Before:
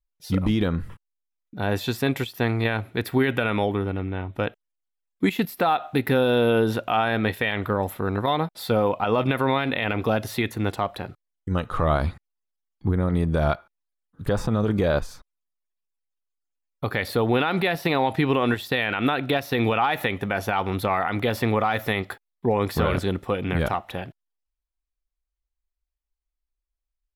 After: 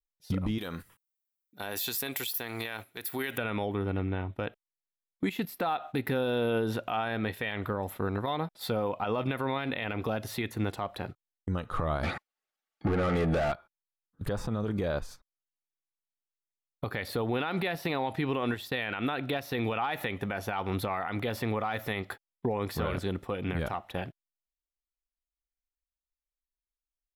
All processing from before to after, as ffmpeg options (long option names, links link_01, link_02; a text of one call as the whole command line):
ffmpeg -i in.wav -filter_complex "[0:a]asettb=1/sr,asplit=3[link_01][link_02][link_03];[link_01]atrim=end=0.584[link_04];[link_02]atrim=start=0.58:end=3.38,asetpts=PTS-STARTPTS,afade=type=in:duration=0.004:curve=qsin,afade=type=out:start_time=2.796:duration=0.004:curve=qsin,aemphasis=mode=production:type=riaa,acompressor=threshold=-26dB:ratio=4:attack=3.2:release=140:knee=1:detection=peak[link_05];[link_03]atrim=start=3.376[link_06];[link_04][link_05]acrossfade=duration=0.004:curve1=hsin:curve2=qsin[link_07];[link_07][link_06]acrossfade=duration=0.004:curve1=qsin:curve2=hsin,asettb=1/sr,asplit=3[link_08][link_09][link_10];[link_08]atrim=end=12.034[link_11];[link_09]atrim=start=12.03:end=13.52,asetpts=PTS-STARTPTS,afade=type=in:duration=0.004:curve=qsin,afade=type=out:start_time=1.486:duration=0.004:curve=qsin,lowshelf=frequency=310:gain=-8,asplit=2[link_12][link_13];[link_13]highpass=frequency=720:poles=1,volume=33dB,asoftclip=type=tanh:threshold=-11.5dB[link_14];[link_12][link_14]amix=inputs=2:normalize=0,lowpass=frequency=1300:poles=1,volume=-6dB,asuperstop=centerf=1000:order=8:qfactor=6.5[link_15];[link_10]atrim=start=13.516[link_16];[link_11][link_15]acrossfade=duration=0.004:curve1=hsin:curve2=qsin[link_17];[link_17][link_16]acrossfade=duration=0.004:curve1=qsin:curve2=hsin,agate=range=-13dB:threshold=-36dB:ratio=16:detection=peak,alimiter=limit=-21dB:level=0:latency=1:release=406" out.wav